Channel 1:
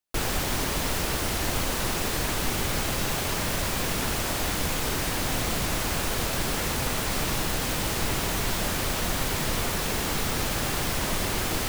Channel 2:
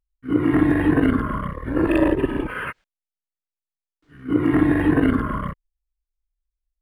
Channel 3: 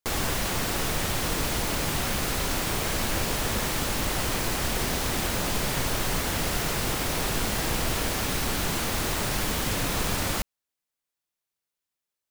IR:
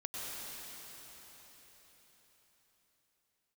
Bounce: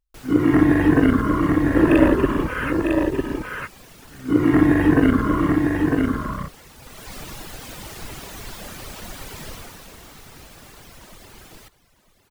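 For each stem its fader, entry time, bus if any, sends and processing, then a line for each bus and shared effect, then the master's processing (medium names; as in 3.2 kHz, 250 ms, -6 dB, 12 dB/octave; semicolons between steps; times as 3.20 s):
6.75 s -17 dB -> 7.10 s -7.5 dB -> 9.48 s -7.5 dB -> 9.93 s -16 dB, 0.00 s, send -9.5 dB, echo send -14 dB, reverb removal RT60 1.5 s
+2.0 dB, 0.00 s, no send, echo send -4 dB, none
mute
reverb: on, RT60 4.7 s, pre-delay 90 ms
echo: delay 952 ms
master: none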